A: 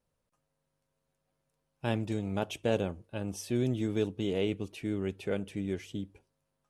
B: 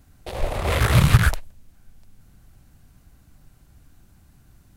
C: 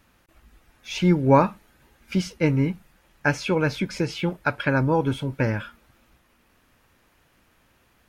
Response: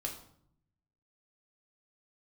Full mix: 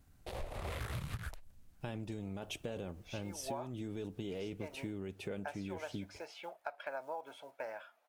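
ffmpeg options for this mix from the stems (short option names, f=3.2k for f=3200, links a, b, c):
-filter_complex "[0:a]alimiter=level_in=1.5dB:limit=-24dB:level=0:latency=1:release=11,volume=-1.5dB,acrusher=bits=11:mix=0:aa=0.000001,volume=0dB[a];[1:a]volume=-11dB[b];[2:a]acrusher=bits=8:mode=log:mix=0:aa=0.000001,highpass=f=680:t=q:w=7.3,adelay=2200,volume=-18.5dB[c];[a][b][c]amix=inputs=3:normalize=0,acompressor=threshold=-37dB:ratio=16"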